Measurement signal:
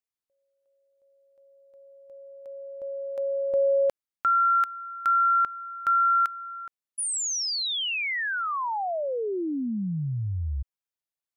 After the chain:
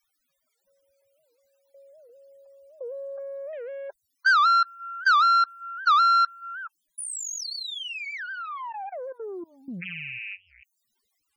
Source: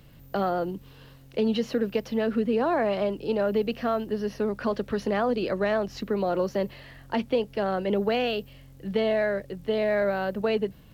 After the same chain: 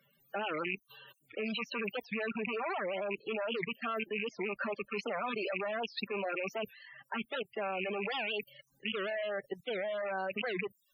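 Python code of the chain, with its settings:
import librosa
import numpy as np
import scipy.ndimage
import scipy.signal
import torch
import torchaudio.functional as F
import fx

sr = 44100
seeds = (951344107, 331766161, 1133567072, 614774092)

y = fx.rattle_buzz(x, sr, strikes_db=-33.0, level_db=-21.0)
y = fx.cheby_harmonics(y, sr, harmonics=(5, 8), levels_db=(-12, -29), full_scale_db=-12.5)
y = fx.highpass(y, sr, hz=1300.0, slope=6)
y = fx.high_shelf(y, sr, hz=4400.0, db=-5.5)
y = y + 0.78 * np.pad(y, (int(5.1 * sr / 1000.0), 0))[:len(y)]
y = fx.level_steps(y, sr, step_db=17)
y = fx.dmg_noise_colour(y, sr, seeds[0], colour='white', level_db=-65.0)
y = fx.dereverb_blind(y, sr, rt60_s=0.51)
y = fx.spec_topn(y, sr, count=32)
y = fx.record_warp(y, sr, rpm=78.0, depth_cents=250.0)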